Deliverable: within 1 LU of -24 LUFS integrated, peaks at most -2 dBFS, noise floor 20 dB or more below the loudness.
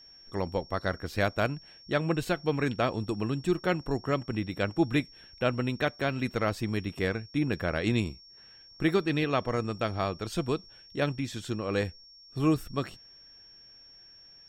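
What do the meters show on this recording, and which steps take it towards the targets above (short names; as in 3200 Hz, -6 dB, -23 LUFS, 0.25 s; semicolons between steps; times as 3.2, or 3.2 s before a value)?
steady tone 5500 Hz; tone level -51 dBFS; loudness -30.5 LUFS; peak -12.0 dBFS; loudness target -24.0 LUFS
-> notch 5500 Hz, Q 30; gain +6.5 dB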